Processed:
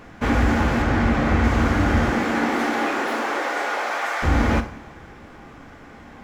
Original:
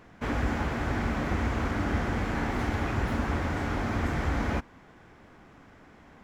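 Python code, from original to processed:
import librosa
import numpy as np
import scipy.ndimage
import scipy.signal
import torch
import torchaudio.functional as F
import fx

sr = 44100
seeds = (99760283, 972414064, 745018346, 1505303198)

p1 = fx.high_shelf(x, sr, hz=7200.0, db=-9.0, at=(0.82, 1.44))
p2 = fx.highpass(p1, sr, hz=fx.line((2.09, 180.0), (4.22, 630.0)), slope=24, at=(2.09, 4.22), fade=0.02)
p3 = np.clip(p2, -10.0 ** (-29.5 / 20.0), 10.0 ** (-29.5 / 20.0))
p4 = p2 + F.gain(torch.from_numpy(p3), -12.0).numpy()
p5 = fx.rev_double_slope(p4, sr, seeds[0], early_s=0.41, late_s=2.3, knee_db=-18, drr_db=6.0)
y = F.gain(torch.from_numpy(p5), 7.5).numpy()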